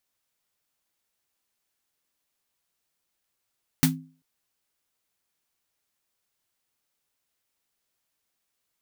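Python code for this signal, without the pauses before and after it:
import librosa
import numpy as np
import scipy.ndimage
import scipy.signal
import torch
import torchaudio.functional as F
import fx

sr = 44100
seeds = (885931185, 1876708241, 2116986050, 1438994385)

y = fx.drum_snare(sr, seeds[0], length_s=0.39, hz=160.0, second_hz=260.0, noise_db=-1.0, noise_from_hz=770.0, decay_s=0.4, noise_decay_s=0.15)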